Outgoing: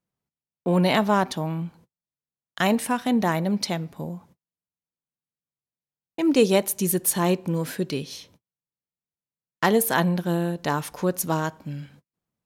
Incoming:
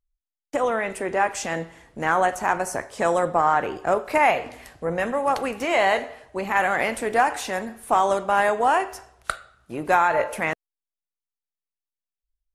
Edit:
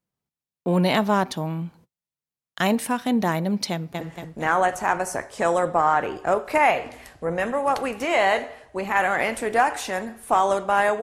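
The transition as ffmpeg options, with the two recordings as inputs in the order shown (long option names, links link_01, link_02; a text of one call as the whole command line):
ffmpeg -i cue0.wav -i cue1.wav -filter_complex "[0:a]apad=whole_dur=11.02,atrim=end=11.02,atrim=end=4.012[link_01];[1:a]atrim=start=1.608:end=8.62[link_02];[link_01][link_02]acrossfade=duration=0.004:curve1=hsin:curve2=hsin,asplit=2[link_03][link_04];[link_04]afade=type=in:start_time=3.71:duration=0.01,afade=type=out:start_time=4.01:duration=0.01,aecho=0:1:230|460|690|920|1150|1380|1610:0.749894|0.374947|0.187474|0.0937368|0.0468684|0.0234342|0.0117171[link_05];[link_03][link_05]amix=inputs=2:normalize=0" out.wav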